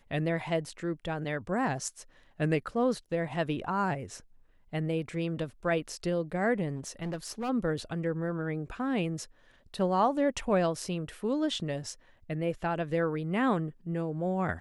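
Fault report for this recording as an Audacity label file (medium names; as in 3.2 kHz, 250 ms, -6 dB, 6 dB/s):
6.760000	7.500000	clipped -30.5 dBFS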